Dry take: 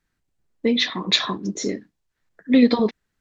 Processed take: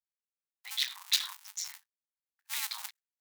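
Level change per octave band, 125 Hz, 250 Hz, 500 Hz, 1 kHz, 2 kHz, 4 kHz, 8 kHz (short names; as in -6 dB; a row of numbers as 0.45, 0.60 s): under -40 dB, under -40 dB, under -40 dB, -18.0 dB, -12.5 dB, -9.0 dB, n/a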